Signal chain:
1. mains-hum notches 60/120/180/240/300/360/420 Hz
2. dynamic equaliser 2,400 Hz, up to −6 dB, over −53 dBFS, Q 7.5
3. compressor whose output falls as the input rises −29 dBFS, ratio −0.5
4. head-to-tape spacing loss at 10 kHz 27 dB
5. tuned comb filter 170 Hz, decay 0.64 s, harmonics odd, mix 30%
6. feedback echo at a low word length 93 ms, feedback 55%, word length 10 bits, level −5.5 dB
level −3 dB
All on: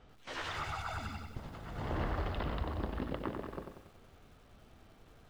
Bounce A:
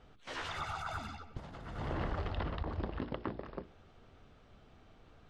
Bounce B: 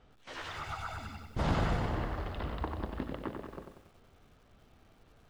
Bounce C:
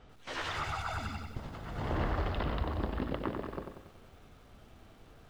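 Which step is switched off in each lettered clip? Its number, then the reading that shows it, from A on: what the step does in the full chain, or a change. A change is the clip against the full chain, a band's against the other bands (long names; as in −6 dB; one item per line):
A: 6, change in integrated loudness −1.0 LU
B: 3, change in momentary loudness spread +4 LU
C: 5, change in integrated loudness +3.0 LU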